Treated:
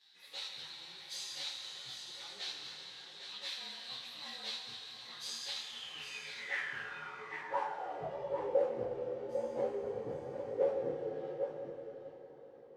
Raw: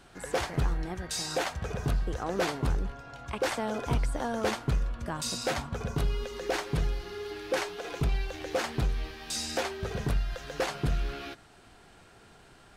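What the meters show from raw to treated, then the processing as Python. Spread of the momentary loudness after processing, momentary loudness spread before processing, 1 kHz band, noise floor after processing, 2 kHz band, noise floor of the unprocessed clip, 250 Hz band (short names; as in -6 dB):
12 LU, 6 LU, -8.0 dB, -55 dBFS, -6.5 dB, -56 dBFS, -15.0 dB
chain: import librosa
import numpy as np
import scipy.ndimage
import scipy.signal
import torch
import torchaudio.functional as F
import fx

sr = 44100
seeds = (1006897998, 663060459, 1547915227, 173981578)

y = fx.partial_stretch(x, sr, pct=109)
y = fx.notch(y, sr, hz=600.0, q=12.0)
y = fx.rev_schroeder(y, sr, rt60_s=3.7, comb_ms=26, drr_db=1.5)
y = fx.filter_sweep_bandpass(y, sr, from_hz=3900.0, to_hz=500.0, start_s=5.56, end_s=8.43, q=7.5)
y = scipy.signal.sosfilt(scipy.signal.butter(4, 77.0, 'highpass', fs=sr, output='sos'), y)
y = fx.low_shelf(y, sr, hz=270.0, db=4.5)
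y = y + 10.0 ** (-9.0 / 20.0) * np.pad(y, (int(803 * sr / 1000.0), 0))[:len(y)]
y = fx.detune_double(y, sr, cents=33)
y = y * librosa.db_to_amplitude(13.0)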